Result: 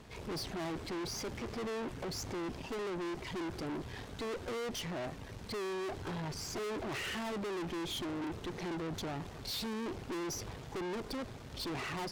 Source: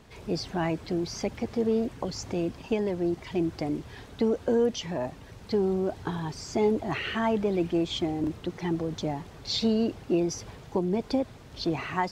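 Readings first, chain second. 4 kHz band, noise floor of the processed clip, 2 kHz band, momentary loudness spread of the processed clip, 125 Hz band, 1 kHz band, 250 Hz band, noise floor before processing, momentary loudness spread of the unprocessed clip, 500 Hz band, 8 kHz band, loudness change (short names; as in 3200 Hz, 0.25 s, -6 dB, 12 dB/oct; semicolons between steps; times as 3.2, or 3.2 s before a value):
-5.5 dB, -48 dBFS, -4.5 dB, 4 LU, -9.5 dB, -7.5 dB, -12.0 dB, -48 dBFS, 8 LU, -11.5 dB, -2.5 dB, -10.0 dB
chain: dynamic EQ 380 Hz, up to +8 dB, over -41 dBFS, Q 3.1; tube stage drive 40 dB, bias 0.65; gain +3 dB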